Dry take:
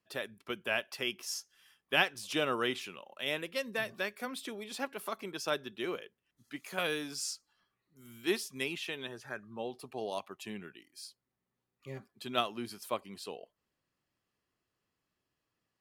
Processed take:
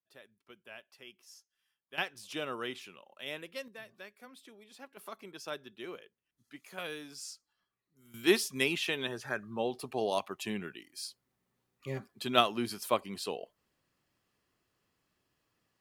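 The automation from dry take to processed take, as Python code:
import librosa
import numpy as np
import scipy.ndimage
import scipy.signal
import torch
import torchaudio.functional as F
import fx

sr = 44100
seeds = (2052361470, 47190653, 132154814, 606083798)

y = fx.gain(x, sr, db=fx.steps((0.0, -17.0), (1.98, -6.0), (3.68, -13.5), (4.97, -7.0), (8.14, 6.0)))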